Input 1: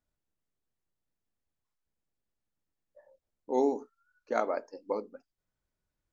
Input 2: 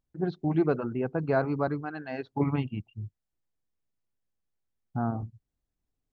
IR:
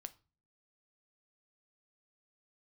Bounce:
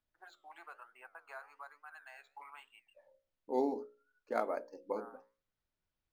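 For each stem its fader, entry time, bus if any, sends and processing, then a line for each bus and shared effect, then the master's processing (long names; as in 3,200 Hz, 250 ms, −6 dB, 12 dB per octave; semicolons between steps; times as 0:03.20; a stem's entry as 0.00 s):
−6.0 dB, 0.00 s, send −9.5 dB, no processing
−1.0 dB, 0.00 s, no send, high-pass filter 950 Hz 24 dB per octave; downward compressor 2 to 1, threshold −46 dBFS, peak gain reduction 9.5 dB; flanger 1.1 Hz, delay 6.3 ms, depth 8.9 ms, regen +85%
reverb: on, RT60 0.35 s, pre-delay 5 ms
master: mains-hum notches 60/120/180/240/300/360/420/480/540/600 Hz; linearly interpolated sample-rate reduction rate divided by 4×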